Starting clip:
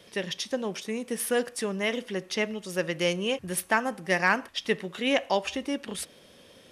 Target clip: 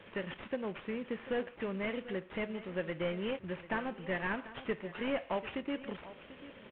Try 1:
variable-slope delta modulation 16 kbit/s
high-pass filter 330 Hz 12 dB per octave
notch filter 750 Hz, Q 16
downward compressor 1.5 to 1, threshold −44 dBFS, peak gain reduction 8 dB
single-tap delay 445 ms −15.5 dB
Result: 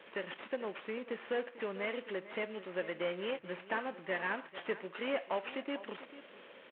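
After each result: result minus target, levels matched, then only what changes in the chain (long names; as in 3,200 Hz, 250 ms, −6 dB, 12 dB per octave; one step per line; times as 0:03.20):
echo 296 ms early; 250 Hz band −4.5 dB
change: single-tap delay 741 ms −15.5 dB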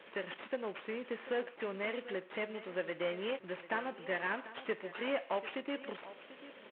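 250 Hz band −4.5 dB
remove: high-pass filter 330 Hz 12 dB per octave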